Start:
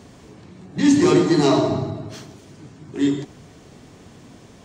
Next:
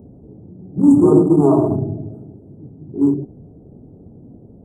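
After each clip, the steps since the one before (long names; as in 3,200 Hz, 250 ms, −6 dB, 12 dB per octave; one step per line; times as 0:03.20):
adaptive Wiener filter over 41 samples
inverse Chebyshev band-stop filter 1,700–6,000 Hz, stop band 40 dB
parametric band 680 Hz −3.5 dB 0.68 octaves
level +5 dB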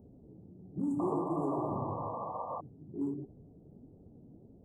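flanger 1.5 Hz, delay 1.1 ms, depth 5.6 ms, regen +64%
downward compressor 3 to 1, threshold −24 dBFS, peak gain reduction 10 dB
sound drawn into the spectrogram noise, 0:00.99–0:02.61, 460–1,200 Hz −30 dBFS
level −9 dB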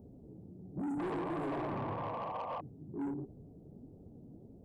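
soft clipping −35.5 dBFS, distortion −9 dB
level +2 dB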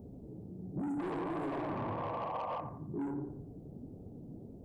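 on a send: bucket-brigade delay 87 ms, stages 1,024, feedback 35%, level −9.5 dB
on the sum: downward compressor, threshold −39 dBFS, peak gain reduction 6.5 dB
level +4.5 dB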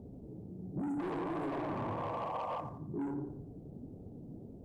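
running median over 9 samples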